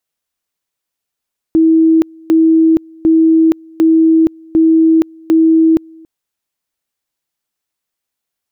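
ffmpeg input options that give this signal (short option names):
-f lavfi -i "aevalsrc='pow(10,(-5.5-29*gte(mod(t,0.75),0.47))/20)*sin(2*PI*323*t)':d=4.5:s=44100"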